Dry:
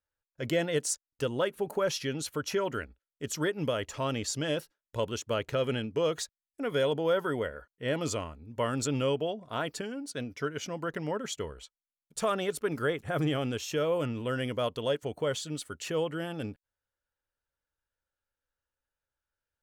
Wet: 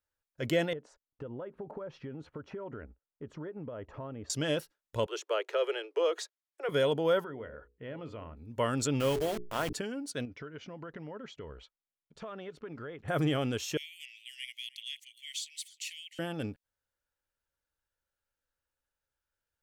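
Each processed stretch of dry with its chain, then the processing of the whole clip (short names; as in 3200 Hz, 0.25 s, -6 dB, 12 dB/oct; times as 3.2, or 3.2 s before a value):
0.73–4.3 LPF 1100 Hz + compressor 10:1, threshold -37 dBFS
5.06–6.69 steep high-pass 340 Hz 96 dB/oct + high shelf 6900 Hz -12 dB
7.24–8.37 notches 60/120/180/240/300/360/420/480/540 Hz + compressor 2.5:1, threshold -41 dBFS + air absorption 400 m
9–9.73 level-crossing sampler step -35.5 dBFS + notches 60/120/180/240/300/360/420 Hz + sustainer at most 59 dB/s
10.25–13.08 compressor 4:1, threshold -40 dBFS + air absorption 220 m
13.77–16.19 steep high-pass 2000 Hz 96 dB/oct + echo 0.308 s -20.5 dB
whole clip: dry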